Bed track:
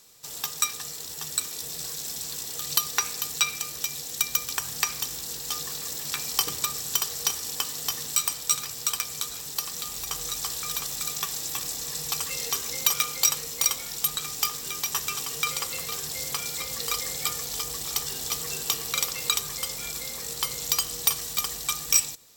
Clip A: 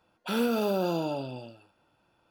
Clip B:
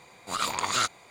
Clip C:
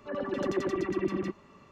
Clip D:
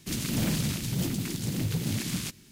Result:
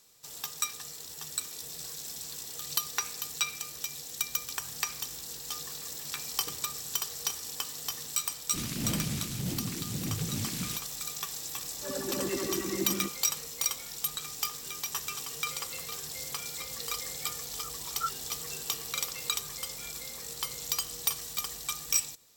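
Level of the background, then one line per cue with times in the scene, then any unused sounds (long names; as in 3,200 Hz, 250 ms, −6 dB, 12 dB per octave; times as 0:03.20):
bed track −6.5 dB
0:08.47: mix in D −5 dB
0:11.76: mix in C −5 dB + double-tracking delay 15 ms −2.5 dB
0:17.24: mix in B −12 dB + every bin expanded away from the loudest bin 4 to 1
not used: A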